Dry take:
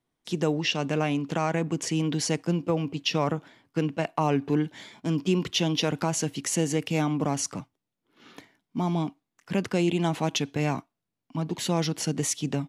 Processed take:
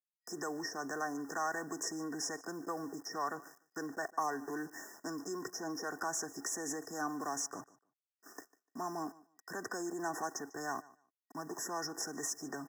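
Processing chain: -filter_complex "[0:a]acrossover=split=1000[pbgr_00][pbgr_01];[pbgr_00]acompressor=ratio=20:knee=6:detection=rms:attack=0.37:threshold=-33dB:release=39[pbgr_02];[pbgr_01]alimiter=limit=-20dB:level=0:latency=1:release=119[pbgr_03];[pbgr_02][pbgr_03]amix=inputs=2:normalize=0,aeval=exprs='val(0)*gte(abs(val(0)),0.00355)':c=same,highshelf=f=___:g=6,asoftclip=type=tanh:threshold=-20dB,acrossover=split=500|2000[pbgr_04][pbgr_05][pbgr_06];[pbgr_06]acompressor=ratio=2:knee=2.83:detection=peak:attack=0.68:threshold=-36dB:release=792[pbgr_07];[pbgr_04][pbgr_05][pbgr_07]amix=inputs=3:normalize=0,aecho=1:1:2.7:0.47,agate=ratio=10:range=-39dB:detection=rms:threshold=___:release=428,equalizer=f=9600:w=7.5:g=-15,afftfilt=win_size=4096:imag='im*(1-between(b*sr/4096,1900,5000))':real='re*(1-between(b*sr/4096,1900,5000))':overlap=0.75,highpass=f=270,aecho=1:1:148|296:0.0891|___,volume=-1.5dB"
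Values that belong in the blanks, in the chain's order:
3900, -50dB, 0.016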